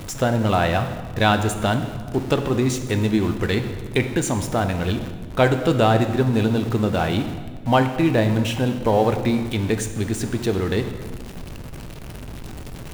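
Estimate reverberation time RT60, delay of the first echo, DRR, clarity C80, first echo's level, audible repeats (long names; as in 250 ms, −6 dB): 1.7 s, no echo audible, 7.0 dB, 10.5 dB, no echo audible, no echo audible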